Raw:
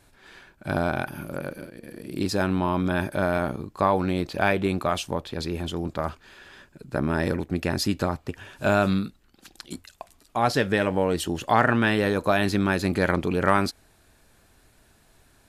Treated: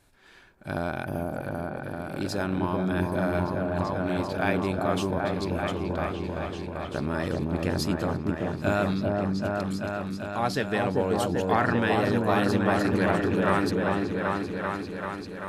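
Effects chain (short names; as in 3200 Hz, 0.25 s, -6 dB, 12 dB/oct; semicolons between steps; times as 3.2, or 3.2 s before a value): 3.39–4.06 compressor 3:1, threshold -26 dBFS, peak gain reduction 8 dB; on a send: repeats that get brighter 0.389 s, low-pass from 750 Hz, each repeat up 1 oct, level 0 dB; on the sum: gain -5 dB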